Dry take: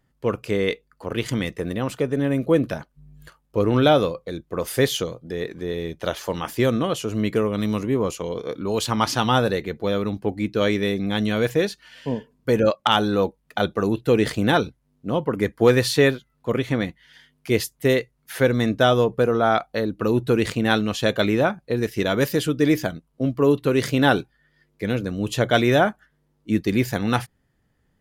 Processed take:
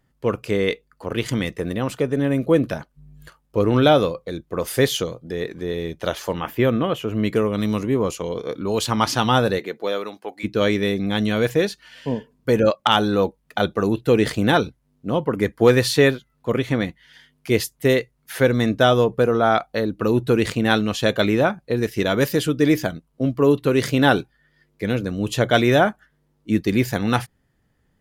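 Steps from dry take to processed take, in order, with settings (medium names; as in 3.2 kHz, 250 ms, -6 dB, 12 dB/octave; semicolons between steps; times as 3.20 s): 6.33–7.23 s: high-order bell 6.6 kHz -12.5 dB; 9.58–10.43 s: high-pass 250 Hz -> 860 Hz 12 dB/octave; trim +1.5 dB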